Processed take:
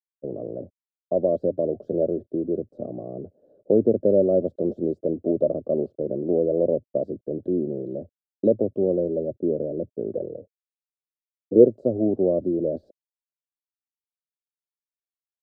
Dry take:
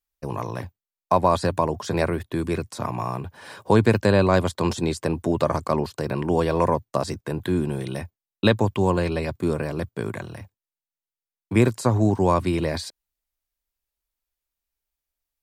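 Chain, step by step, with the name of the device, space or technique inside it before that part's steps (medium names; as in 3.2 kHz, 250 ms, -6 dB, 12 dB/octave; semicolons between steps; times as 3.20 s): gate -36 dBFS, range -16 dB; phone line with mismatched companding (band-pass 310–3500 Hz; companding laws mixed up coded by mu); elliptic low-pass 600 Hz, stop band 40 dB; 10.15–11.66 s: peaking EQ 470 Hz +14.5 dB 0.42 oct; trim +3 dB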